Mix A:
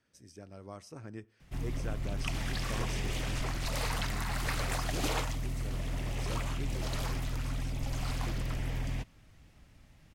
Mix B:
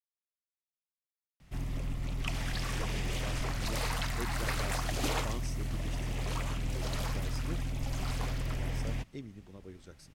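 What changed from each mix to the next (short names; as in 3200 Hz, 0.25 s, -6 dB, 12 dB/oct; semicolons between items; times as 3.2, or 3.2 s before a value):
speech: entry +2.55 s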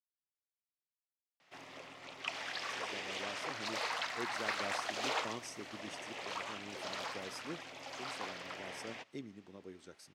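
background: add three-band isolator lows -20 dB, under 420 Hz, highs -19 dB, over 6300 Hz; master: add HPF 210 Hz 12 dB/oct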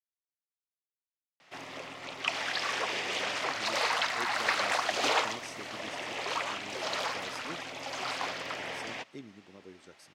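background +8.5 dB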